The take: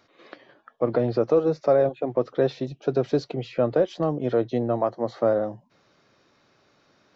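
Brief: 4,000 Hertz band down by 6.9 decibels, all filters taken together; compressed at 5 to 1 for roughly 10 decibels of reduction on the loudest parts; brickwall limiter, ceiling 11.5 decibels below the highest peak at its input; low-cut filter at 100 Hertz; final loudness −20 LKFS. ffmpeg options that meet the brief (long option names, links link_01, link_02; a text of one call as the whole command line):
ffmpeg -i in.wav -af "highpass=100,equalizer=frequency=4000:width_type=o:gain=-8.5,acompressor=threshold=-27dB:ratio=5,volume=17.5dB,alimiter=limit=-9dB:level=0:latency=1" out.wav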